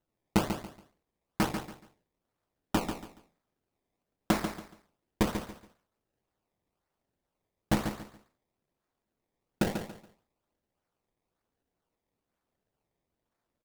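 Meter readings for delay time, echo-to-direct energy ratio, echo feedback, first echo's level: 0.141 s, -7.5 dB, 26%, -8.0 dB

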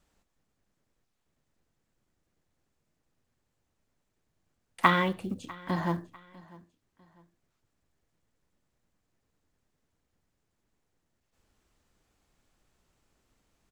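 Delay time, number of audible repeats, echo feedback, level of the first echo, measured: 0.648 s, 2, 35%, -22.0 dB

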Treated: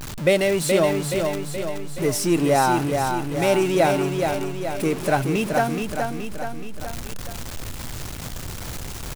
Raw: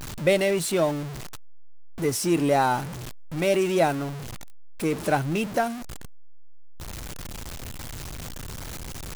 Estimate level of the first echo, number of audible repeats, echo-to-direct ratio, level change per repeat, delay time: -5.0 dB, 4, -3.5 dB, -5.0 dB, 0.424 s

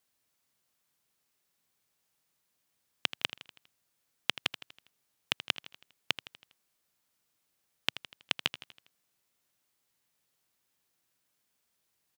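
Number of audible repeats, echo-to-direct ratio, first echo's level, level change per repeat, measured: 4, -12.5 dB, -14.0 dB, -6.0 dB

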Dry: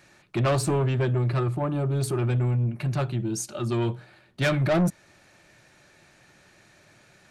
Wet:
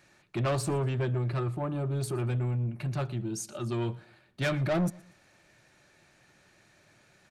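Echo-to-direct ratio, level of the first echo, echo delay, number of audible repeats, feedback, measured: -22.5 dB, -23.0 dB, 0.118 s, 2, 37%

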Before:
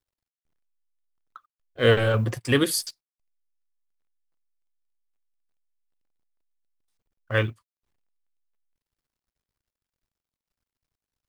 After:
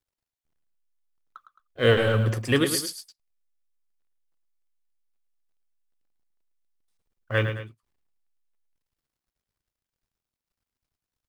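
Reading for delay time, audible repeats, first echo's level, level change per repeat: 0.108 s, 2, -8.5 dB, -6.5 dB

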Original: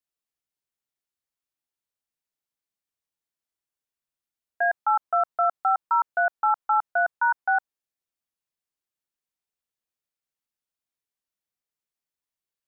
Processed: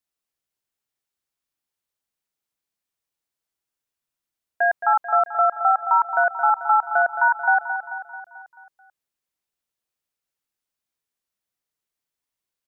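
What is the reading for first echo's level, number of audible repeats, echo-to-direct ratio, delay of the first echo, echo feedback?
-10.0 dB, 5, -8.5 dB, 0.219 s, 55%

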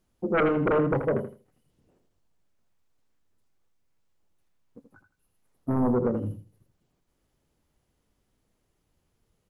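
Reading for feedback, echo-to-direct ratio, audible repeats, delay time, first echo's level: 21%, -8.5 dB, 2, 81 ms, -8.5 dB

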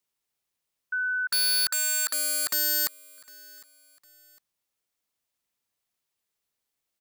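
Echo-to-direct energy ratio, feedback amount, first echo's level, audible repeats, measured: -22.5 dB, 36%, -23.0 dB, 2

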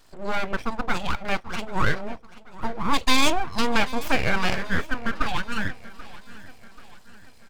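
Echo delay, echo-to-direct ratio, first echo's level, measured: 0.785 s, -17.5 dB, -18.5 dB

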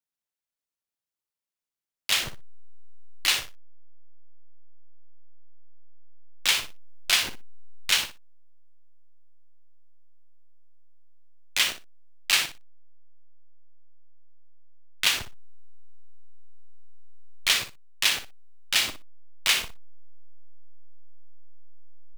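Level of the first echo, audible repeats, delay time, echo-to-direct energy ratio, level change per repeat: -10.5 dB, 2, 60 ms, -10.5 dB, -16.5 dB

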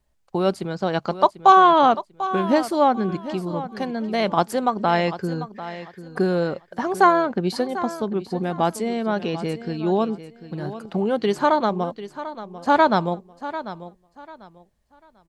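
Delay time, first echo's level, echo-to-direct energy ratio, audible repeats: 0.744 s, -13.5 dB, -13.0 dB, 2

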